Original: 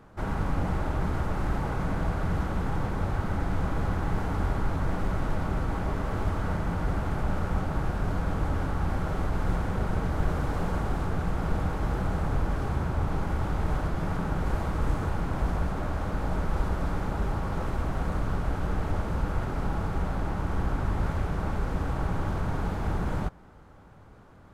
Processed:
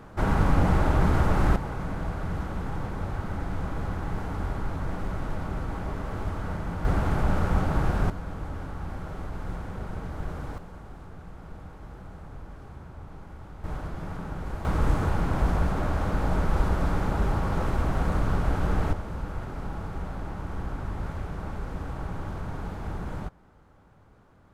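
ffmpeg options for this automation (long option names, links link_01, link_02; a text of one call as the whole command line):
ffmpeg -i in.wav -af "asetnsamples=nb_out_samples=441:pad=0,asendcmd='1.56 volume volume -3dB;6.85 volume volume 4dB;8.1 volume volume -7dB;10.58 volume volume -15dB;13.64 volume volume -6dB;14.65 volume volume 3.5dB;18.93 volume volume -5dB',volume=6.5dB" out.wav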